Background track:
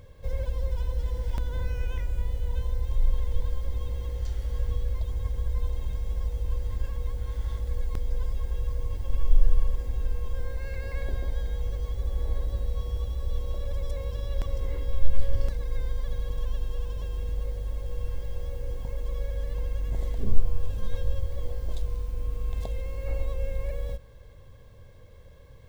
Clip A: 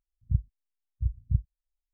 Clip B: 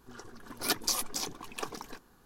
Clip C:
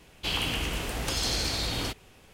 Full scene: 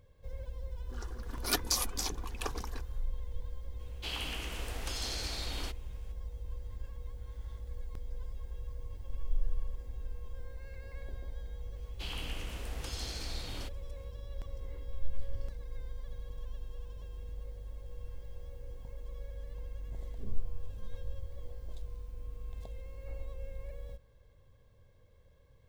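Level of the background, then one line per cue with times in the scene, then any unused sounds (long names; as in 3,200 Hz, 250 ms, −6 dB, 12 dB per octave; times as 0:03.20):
background track −12.5 dB
0:00.83: mix in B −1 dB, fades 0.10 s
0:03.79: mix in C −9 dB + high-pass filter 250 Hz 6 dB per octave
0:11.76: mix in C −13 dB
not used: A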